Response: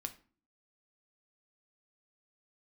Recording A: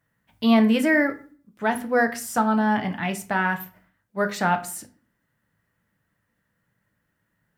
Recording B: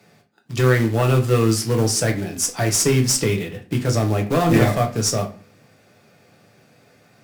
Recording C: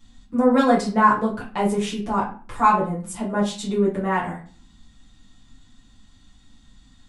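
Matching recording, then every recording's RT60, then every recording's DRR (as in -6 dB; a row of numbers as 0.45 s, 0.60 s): A; 0.40 s, 0.40 s, 0.40 s; 7.0 dB, 2.5 dB, -7.0 dB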